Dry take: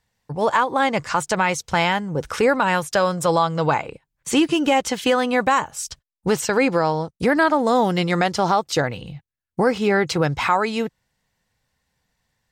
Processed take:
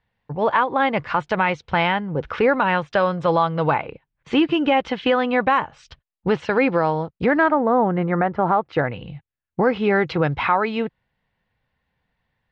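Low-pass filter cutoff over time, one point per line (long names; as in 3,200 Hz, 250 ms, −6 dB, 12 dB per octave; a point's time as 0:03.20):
low-pass filter 24 dB per octave
0:07.29 3,300 Hz
0:07.75 1,700 Hz
0:08.33 1,700 Hz
0:09.11 3,300 Hz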